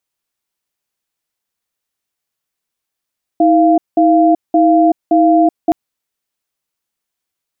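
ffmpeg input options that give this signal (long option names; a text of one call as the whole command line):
ffmpeg -f lavfi -i "aevalsrc='0.335*(sin(2*PI*320*t)+sin(2*PI*692*t))*clip(min(mod(t,0.57),0.38-mod(t,0.57))/0.005,0,1)':duration=2.32:sample_rate=44100" out.wav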